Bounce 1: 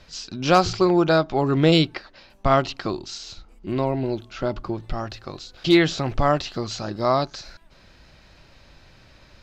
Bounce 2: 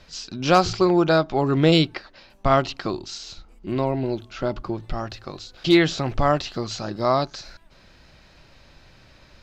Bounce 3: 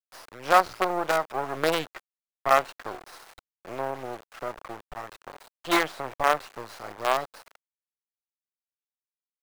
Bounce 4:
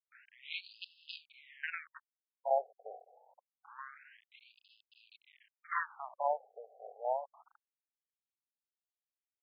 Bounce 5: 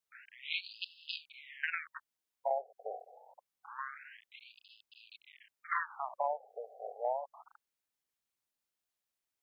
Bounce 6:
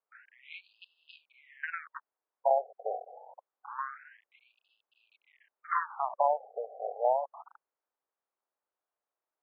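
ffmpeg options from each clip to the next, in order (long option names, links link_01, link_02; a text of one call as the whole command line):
ffmpeg -i in.wav -af "bandreject=frequency=50:width_type=h:width=6,bandreject=frequency=100:width_type=h:width=6" out.wav
ffmpeg -i in.wav -filter_complex "[0:a]acrusher=bits=3:dc=4:mix=0:aa=0.000001,acrossover=split=480 2100:gain=0.126 1 0.224[link_01][link_02][link_03];[link_01][link_02][link_03]amix=inputs=3:normalize=0" out.wav
ffmpeg -i in.wav -af "afftfilt=real='re*between(b*sr/1024,550*pow(3700/550,0.5+0.5*sin(2*PI*0.26*pts/sr))/1.41,550*pow(3700/550,0.5+0.5*sin(2*PI*0.26*pts/sr))*1.41)':imag='im*between(b*sr/1024,550*pow(3700/550,0.5+0.5*sin(2*PI*0.26*pts/sr))/1.41,550*pow(3700/550,0.5+0.5*sin(2*PI*0.26*pts/sr))*1.41)':win_size=1024:overlap=0.75,volume=-7dB" out.wav
ffmpeg -i in.wav -af "acompressor=threshold=-36dB:ratio=6,volume=6dB" out.wav
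ffmpeg -i in.wav -af "asuperpass=centerf=710:order=4:qfactor=0.79,volume=7.5dB" out.wav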